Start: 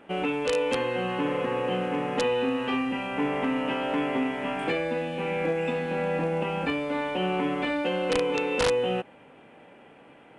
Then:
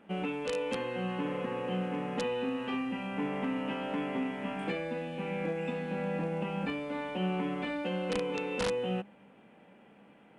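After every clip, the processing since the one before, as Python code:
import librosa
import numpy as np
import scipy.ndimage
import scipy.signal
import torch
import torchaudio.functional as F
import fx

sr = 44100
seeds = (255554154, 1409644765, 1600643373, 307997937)

y = fx.peak_eq(x, sr, hz=200.0, db=14.5, octaves=0.27)
y = y * librosa.db_to_amplitude(-8.0)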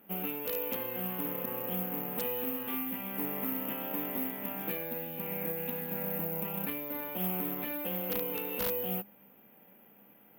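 y = (np.kron(x[::3], np.eye(3)[0]) * 3)[:len(x)]
y = fx.doppler_dist(y, sr, depth_ms=0.16)
y = y * librosa.db_to_amplitude(-4.5)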